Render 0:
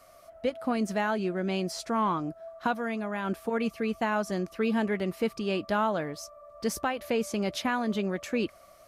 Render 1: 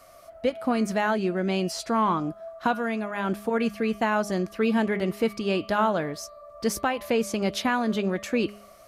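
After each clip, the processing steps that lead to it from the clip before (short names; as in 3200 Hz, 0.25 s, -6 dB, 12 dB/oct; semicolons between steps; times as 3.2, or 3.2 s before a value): de-hum 205.5 Hz, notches 23; gain +4 dB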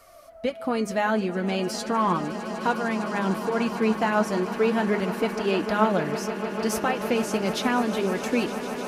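flange 0.37 Hz, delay 2.1 ms, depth 8.1 ms, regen +46%; swelling echo 0.152 s, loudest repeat 8, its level -16.5 dB; gain +4 dB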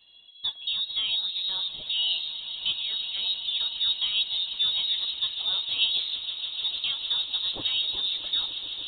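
band shelf 2000 Hz -12.5 dB 1.1 oct; inverted band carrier 4000 Hz; gain -4 dB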